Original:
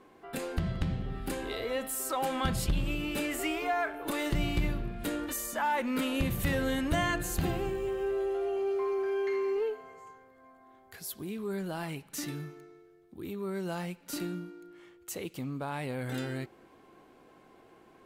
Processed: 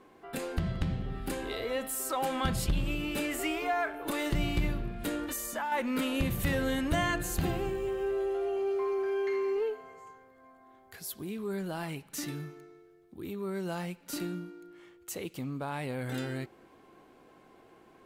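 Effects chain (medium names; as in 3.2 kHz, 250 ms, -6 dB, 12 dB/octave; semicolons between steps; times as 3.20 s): 5.30–5.72 s: compression, threshold -31 dBFS, peak gain reduction 5.5 dB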